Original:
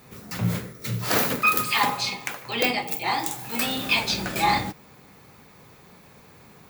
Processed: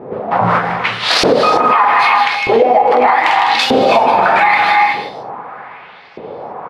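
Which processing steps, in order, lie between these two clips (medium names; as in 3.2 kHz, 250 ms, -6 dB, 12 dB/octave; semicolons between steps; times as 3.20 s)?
sample-rate reducer 15 kHz, jitter 0%; level-controlled noise filter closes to 2.4 kHz, open at -22.5 dBFS; peaking EQ 730 Hz +11.5 dB 1.8 oct; on a send: delay 155 ms -9 dB; on the sum: LFO band-pass saw up 0.81 Hz 370–5400 Hz; tone controls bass +7 dB, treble -11 dB; gated-style reverb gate 380 ms rising, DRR 7 dB; compression, threshold -25 dBFS, peak gain reduction 12 dB; loudness maximiser +23 dB; trim -1 dB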